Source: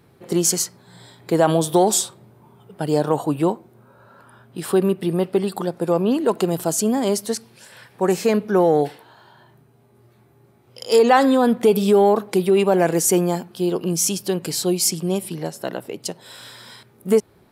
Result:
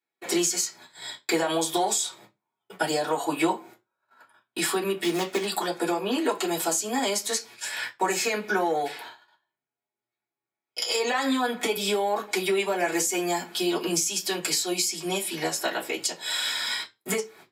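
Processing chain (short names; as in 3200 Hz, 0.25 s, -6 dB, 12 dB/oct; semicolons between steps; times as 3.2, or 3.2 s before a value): 5.03–5.45 switching dead time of 0.12 ms; HPF 280 Hz 6 dB/oct; gate -46 dBFS, range -39 dB; tilt shelf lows -7.5 dB, about 930 Hz; limiter -9 dBFS, peak gain reduction 10 dB; compressor 6:1, threshold -31 dBFS, peak gain reduction 14.5 dB; reverb, pre-delay 3 ms, DRR -10.5 dB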